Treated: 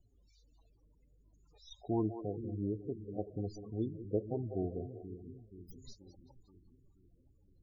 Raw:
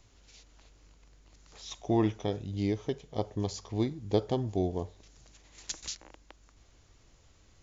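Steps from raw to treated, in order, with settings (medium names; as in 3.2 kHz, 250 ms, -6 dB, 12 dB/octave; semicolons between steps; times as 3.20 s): tracing distortion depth 0.17 ms; 4.69–5.67 s: low-pass 1.4 kHz 6 dB/octave; on a send: two-band feedback delay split 320 Hz, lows 480 ms, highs 191 ms, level -9.5 dB; on the sum: loudest bins only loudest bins 16; trim -6.5 dB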